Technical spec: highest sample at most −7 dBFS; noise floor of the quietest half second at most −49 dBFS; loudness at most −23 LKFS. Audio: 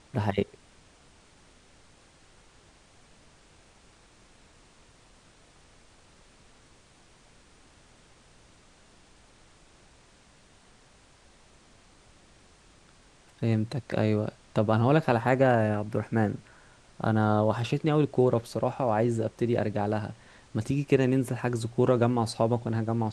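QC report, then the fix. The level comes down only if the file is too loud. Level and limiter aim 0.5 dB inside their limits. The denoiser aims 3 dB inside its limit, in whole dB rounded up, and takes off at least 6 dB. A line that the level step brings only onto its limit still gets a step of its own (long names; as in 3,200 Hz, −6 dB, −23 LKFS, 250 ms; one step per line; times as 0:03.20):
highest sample −8.5 dBFS: in spec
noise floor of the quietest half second −58 dBFS: in spec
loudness −27.0 LKFS: in spec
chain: no processing needed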